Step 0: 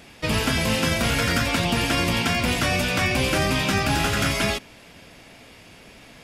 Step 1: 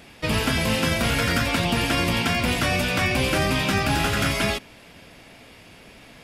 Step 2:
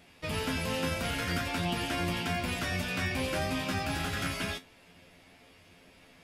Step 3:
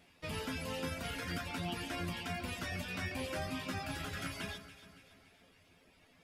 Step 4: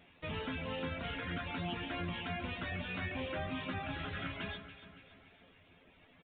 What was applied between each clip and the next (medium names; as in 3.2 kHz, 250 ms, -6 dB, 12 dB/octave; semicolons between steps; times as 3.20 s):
peaking EQ 6.5 kHz -3 dB 0.72 oct
feedback comb 88 Hz, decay 0.15 s, harmonics all, mix 90%; trim -5 dB
reverb removal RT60 0.97 s; on a send: echo whose repeats swap between lows and highs 141 ms, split 1.7 kHz, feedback 71%, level -10.5 dB; on the sum: trim -6 dB
in parallel at -3 dB: peak limiter -37.5 dBFS, peak gain reduction 11 dB; on the sum: resampled via 8 kHz; trim -2 dB